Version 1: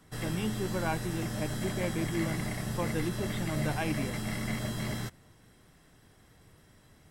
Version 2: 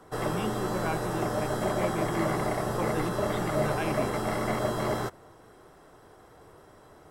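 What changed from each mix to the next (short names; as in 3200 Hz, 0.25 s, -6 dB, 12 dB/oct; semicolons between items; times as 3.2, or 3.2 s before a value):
background: add band shelf 680 Hz +13.5 dB 2.4 oct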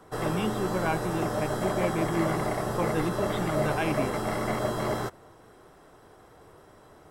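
speech +4.0 dB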